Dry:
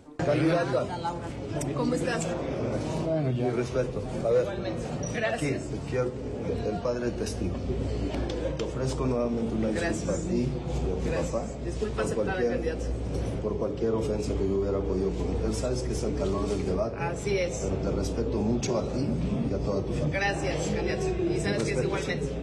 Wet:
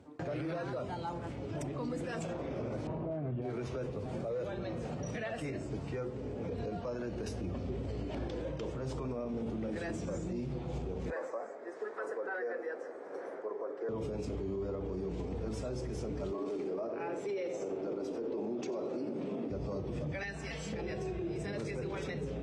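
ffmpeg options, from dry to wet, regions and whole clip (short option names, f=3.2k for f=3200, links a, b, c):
-filter_complex "[0:a]asettb=1/sr,asplit=3[a][b][c];[a]atrim=end=2.874[d];[b]atrim=start=2.87:end=3.42,asetpts=PTS-STARTPTS,afade=t=in:d=0.004:c=qsin,afade=t=out:st=0.546:d=0.004:c=qsin,lowpass=1.6k,asoftclip=type=hard:threshold=-19.5dB[e];[c]atrim=start=3.416[f];[d][e]acrossfade=d=0.004:c1=hsin:c2=qsin[g];[g][f]acrossfade=d=0.004:c1=qsin:c2=hsin,asettb=1/sr,asplit=3[h][i][j];[h]atrim=end=11.104[k];[i]atrim=start=11.1:end=13.89,asetpts=PTS-STARTPTS,afade=t=in:d=0.004:c=qsin,afade=t=out:st=2.786:d=0.004:c=qsin,highpass=f=390:w=0.5412,highpass=f=390:w=1.3066,highshelf=f=2.2k:t=q:w=3:g=-8.5[l];[j]atrim=start=13.886[m];[k][l]acrossfade=d=0.004:c1=hsin:c2=qsin[n];[n][m]acrossfade=d=0.004:c1=qsin:c2=hsin,asettb=1/sr,asplit=3[o][p][q];[o]atrim=end=16.314[r];[p]atrim=start=16.31:end=19.5,asetpts=PTS-STARTPTS,afade=t=in:d=0.004:c=qsin,afade=t=out:st=3.186:d=0.004:c=qsin,highpass=f=330:t=q:w=1.9,highshelf=f=4.5k:g=-5.5,aecho=1:1:87:0.282,atrim=end_sample=140679[s];[q]atrim=start=19.496[t];[r][s]acrossfade=d=0.004:c1=hsin:c2=qsin[u];[u][t]acrossfade=d=0.004:c1=qsin:c2=hsin,asettb=1/sr,asplit=3[v][w][x];[v]atrim=end=20.234[y];[w]atrim=start=20.23:end=20.73,asetpts=PTS-STARTPTS,afade=t=in:d=0.004:c=qsin,afade=t=out:st=0.496:d=0.004:c=qsin,aecho=1:1:4.5:0.65,atrim=end_sample=22050,acrossover=split=240|1200[z][aa][ab];[z]acompressor=threshold=-36dB:ratio=4[ac];[aa]acompressor=threshold=-44dB:ratio=4[ad];[ab]acompressor=threshold=-31dB:ratio=4[ae];[ac][ad][ae]amix=inputs=3:normalize=0[af];[x]atrim=start=20.726[ag];[y][af]acrossfade=d=0.004:c1=hsin:c2=qsin[ah];[ah][ag]acrossfade=d=0.004:c1=qsin:c2=hsin,highpass=f=56:w=0.5412,highpass=f=56:w=1.3066,aemphasis=mode=reproduction:type=cd,alimiter=level_in=0.5dB:limit=-24dB:level=0:latency=1:release=43,volume=-0.5dB,volume=-5.5dB"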